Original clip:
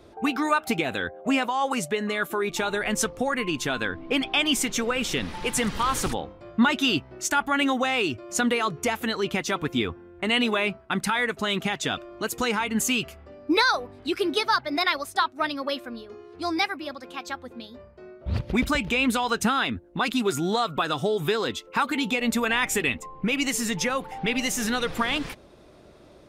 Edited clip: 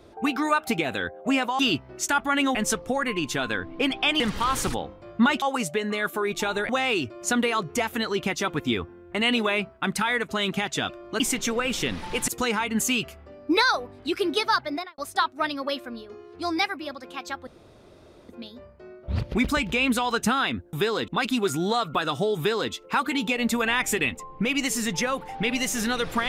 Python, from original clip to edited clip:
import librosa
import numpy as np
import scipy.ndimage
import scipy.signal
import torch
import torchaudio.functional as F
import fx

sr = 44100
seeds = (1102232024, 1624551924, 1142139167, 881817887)

y = fx.studio_fade_out(x, sr, start_s=14.64, length_s=0.34)
y = fx.edit(y, sr, fx.swap(start_s=1.59, length_s=1.27, other_s=6.81, other_length_s=0.96),
    fx.move(start_s=4.51, length_s=1.08, to_s=12.28),
    fx.insert_room_tone(at_s=17.47, length_s=0.82),
    fx.duplicate(start_s=21.2, length_s=0.35, to_s=19.91), tone=tone)